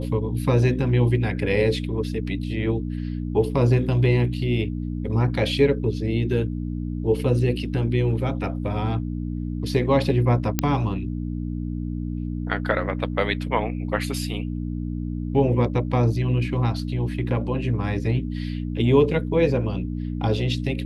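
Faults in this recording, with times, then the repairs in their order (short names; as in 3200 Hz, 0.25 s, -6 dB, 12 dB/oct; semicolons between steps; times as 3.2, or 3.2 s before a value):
hum 60 Hz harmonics 5 -28 dBFS
10.59 pop -4 dBFS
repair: de-click; de-hum 60 Hz, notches 5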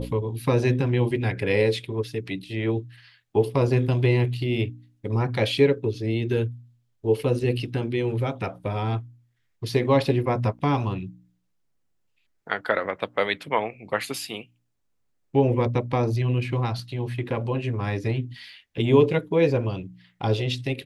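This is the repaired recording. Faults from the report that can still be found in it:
none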